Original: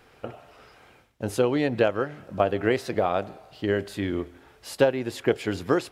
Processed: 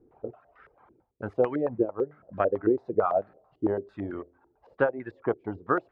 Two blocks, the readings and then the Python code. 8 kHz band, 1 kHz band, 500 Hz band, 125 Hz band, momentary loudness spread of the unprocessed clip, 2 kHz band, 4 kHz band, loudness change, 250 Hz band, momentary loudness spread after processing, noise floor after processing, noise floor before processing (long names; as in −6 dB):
below −35 dB, −1.5 dB, −2.5 dB, −7.5 dB, 17 LU, −6.0 dB, below −20 dB, −3.0 dB, −3.0 dB, 13 LU, −71 dBFS, −57 dBFS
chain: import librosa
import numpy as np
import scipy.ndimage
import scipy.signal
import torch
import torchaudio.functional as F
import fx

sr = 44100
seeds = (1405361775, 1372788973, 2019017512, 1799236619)

y = fx.dereverb_blind(x, sr, rt60_s=1.0)
y = fx.filter_held_lowpass(y, sr, hz=9.0, low_hz=340.0, high_hz=1700.0)
y = F.gain(torch.from_numpy(y), -6.0).numpy()